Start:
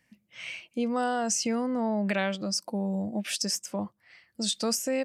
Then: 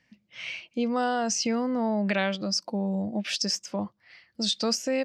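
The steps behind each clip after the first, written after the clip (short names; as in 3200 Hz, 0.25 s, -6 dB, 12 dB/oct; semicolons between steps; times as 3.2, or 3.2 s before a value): resonant high shelf 7100 Hz -12.5 dB, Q 1.5; gain +1.5 dB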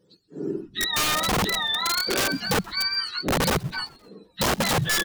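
spectrum mirrored in octaves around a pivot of 950 Hz; wrapped overs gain 21.5 dB; frequency-shifting echo 0.13 s, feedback 60%, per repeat -140 Hz, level -24 dB; gain +4.5 dB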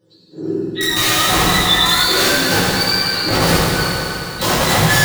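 reverb RT60 3.4 s, pre-delay 4 ms, DRR -9.5 dB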